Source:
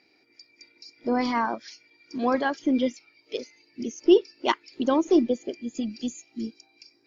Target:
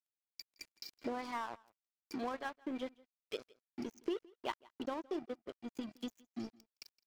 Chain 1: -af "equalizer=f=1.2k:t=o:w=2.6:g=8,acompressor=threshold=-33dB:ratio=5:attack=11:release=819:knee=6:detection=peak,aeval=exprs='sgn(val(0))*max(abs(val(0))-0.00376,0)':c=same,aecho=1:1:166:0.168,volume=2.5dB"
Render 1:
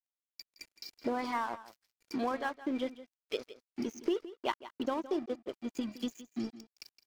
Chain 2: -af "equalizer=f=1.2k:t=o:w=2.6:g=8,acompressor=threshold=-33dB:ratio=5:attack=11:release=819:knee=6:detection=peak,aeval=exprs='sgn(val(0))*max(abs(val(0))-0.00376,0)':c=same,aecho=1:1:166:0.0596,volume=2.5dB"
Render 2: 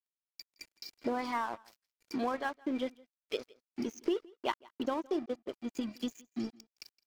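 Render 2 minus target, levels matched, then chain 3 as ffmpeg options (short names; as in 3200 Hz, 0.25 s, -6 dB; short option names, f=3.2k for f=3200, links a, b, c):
compressor: peak gain reduction -5 dB
-af "equalizer=f=1.2k:t=o:w=2.6:g=8,acompressor=threshold=-39.5dB:ratio=5:attack=11:release=819:knee=6:detection=peak,aeval=exprs='sgn(val(0))*max(abs(val(0))-0.00376,0)':c=same,aecho=1:1:166:0.0596,volume=2.5dB"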